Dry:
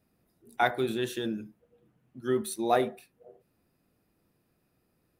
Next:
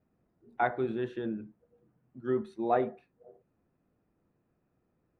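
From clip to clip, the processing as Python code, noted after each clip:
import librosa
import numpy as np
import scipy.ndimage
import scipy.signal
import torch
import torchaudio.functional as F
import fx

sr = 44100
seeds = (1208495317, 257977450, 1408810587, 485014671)

y = scipy.signal.sosfilt(scipy.signal.butter(2, 1600.0, 'lowpass', fs=sr, output='sos'), x)
y = y * librosa.db_to_amplitude(-2.0)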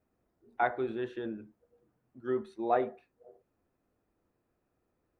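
y = fx.peak_eq(x, sr, hz=160.0, db=-9.0, octaves=1.2)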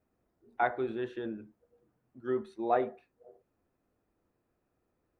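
y = x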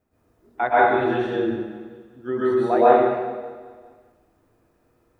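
y = fx.echo_feedback(x, sr, ms=200, feedback_pct=54, wet_db=-18.0)
y = fx.rev_plate(y, sr, seeds[0], rt60_s=1.2, hf_ratio=0.85, predelay_ms=105, drr_db=-9.5)
y = y * librosa.db_to_amplitude(4.5)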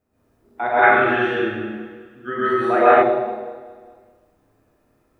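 y = fx.rev_schroeder(x, sr, rt60_s=0.46, comb_ms=29, drr_db=-0.5)
y = fx.spec_box(y, sr, start_s=0.83, length_s=2.19, low_hz=1100.0, high_hz=3300.0, gain_db=10)
y = y * librosa.db_to_amplitude(-2.0)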